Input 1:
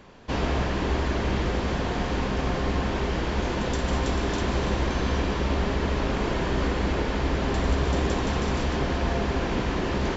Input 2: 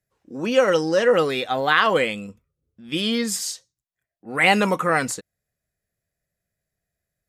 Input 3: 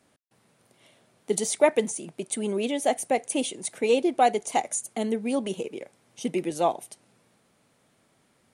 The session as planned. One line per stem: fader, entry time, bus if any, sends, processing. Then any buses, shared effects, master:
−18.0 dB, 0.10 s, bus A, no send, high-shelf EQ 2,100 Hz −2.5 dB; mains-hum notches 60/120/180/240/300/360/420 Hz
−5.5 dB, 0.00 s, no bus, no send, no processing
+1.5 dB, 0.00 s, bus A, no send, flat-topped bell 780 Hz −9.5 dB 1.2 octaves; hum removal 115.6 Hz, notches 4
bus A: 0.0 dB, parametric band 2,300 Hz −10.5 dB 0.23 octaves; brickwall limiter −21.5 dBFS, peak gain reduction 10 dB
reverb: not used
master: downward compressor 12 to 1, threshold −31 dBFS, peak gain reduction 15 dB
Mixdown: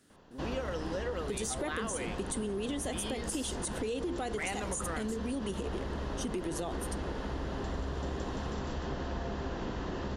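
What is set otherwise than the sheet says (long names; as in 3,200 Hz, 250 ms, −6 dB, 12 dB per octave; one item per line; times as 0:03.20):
stem 1 −18.0 dB → −8.5 dB
stem 2 −5.5 dB → −14.5 dB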